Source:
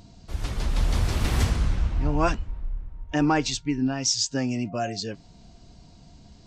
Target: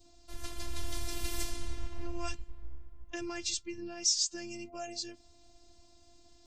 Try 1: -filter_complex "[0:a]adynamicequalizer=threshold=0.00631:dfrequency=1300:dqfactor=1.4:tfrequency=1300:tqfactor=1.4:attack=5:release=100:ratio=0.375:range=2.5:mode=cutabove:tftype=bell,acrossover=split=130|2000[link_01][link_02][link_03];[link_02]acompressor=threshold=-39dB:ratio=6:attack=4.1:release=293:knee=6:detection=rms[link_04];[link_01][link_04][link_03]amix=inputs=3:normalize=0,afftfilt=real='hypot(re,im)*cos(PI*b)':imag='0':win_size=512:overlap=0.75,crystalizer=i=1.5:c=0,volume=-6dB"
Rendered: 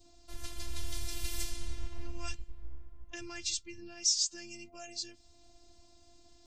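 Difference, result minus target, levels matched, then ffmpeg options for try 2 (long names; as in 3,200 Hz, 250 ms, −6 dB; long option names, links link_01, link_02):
downward compressor: peak gain reduction +9 dB
-filter_complex "[0:a]adynamicequalizer=threshold=0.00631:dfrequency=1300:dqfactor=1.4:tfrequency=1300:tqfactor=1.4:attack=5:release=100:ratio=0.375:range=2.5:mode=cutabove:tftype=bell,acrossover=split=130|2000[link_01][link_02][link_03];[link_02]acompressor=threshold=-28.5dB:ratio=6:attack=4.1:release=293:knee=6:detection=rms[link_04];[link_01][link_04][link_03]amix=inputs=3:normalize=0,afftfilt=real='hypot(re,im)*cos(PI*b)':imag='0':win_size=512:overlap=0.75,crystalizer=i=1.5:c=0,volume=-6dB"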